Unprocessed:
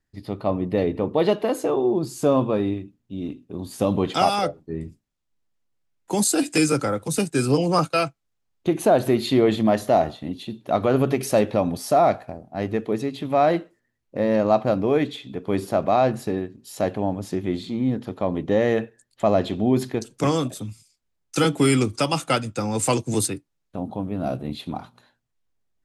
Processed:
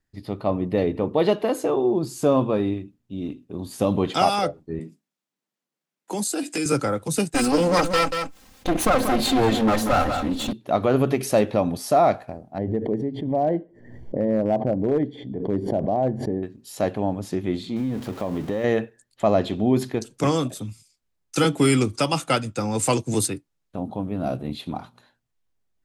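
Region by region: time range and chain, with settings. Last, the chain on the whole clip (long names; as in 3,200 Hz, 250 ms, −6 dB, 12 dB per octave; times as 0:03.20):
0:04.79–0:06.66: Butterworth high-pass 160 Hz + downward compressor 2 to 1, threshold −27 dBFS
0:07.34–0:10.53: lower of the sound and its delayed copy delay 3.8 ms + single-tap delay 186 ms −13 dB + envelope flattener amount 50%
0:12.58–0:16.43: moving average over 34 samples + gain into a clipping stage and back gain 14 dB + background raised ahead of every attack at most 67 dB per second
0:17.76–0:18.64: converter with a step at zero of −35.5 dBFS + downward compressor, threshold −21 dBFS
whole clip: no processing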